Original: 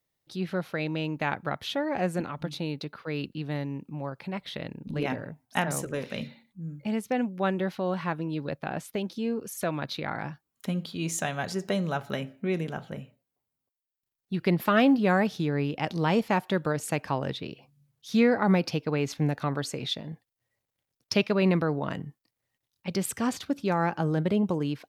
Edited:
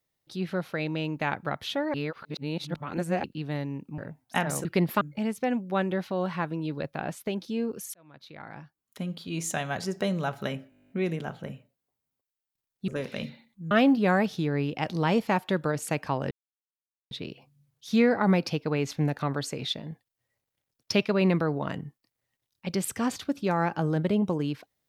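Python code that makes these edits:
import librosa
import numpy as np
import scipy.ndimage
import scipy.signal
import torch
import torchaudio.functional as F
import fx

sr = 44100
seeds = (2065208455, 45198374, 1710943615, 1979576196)

y = fx.edit(x, sr, fx.reverse_span(start_s=1.94, length_s=1.3),
    fx.cut(start_s=3.98, length_s=1.21),
    fx.swap(start_s=5.86, length_s=0.83, other_s=14.36, other_length_s=0.36),
    fx.fade_in_span(start_s=9.62, length_s=1.68),
    fx.stutter(start_s=12.38, slice_s=0.02, count=11),
    fx.insert_silence(at_s=17.32, length_s=0.8), tone=tone)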